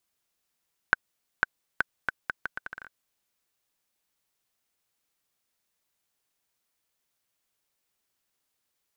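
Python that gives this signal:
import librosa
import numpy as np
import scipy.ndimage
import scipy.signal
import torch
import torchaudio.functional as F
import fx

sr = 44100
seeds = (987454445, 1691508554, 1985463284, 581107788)

y = fx.bouncing_ball(sr, first_gap_s=0.5, ratio=0.75, hz=1530.0, decay_ms=19.0, level_db=-4.5)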